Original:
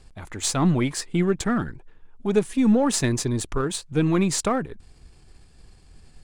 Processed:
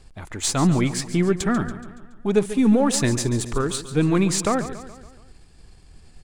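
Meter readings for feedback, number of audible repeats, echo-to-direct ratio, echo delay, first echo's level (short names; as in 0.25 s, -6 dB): 52%, 4, -11.5 dB, 0.141 s, -13.0 dB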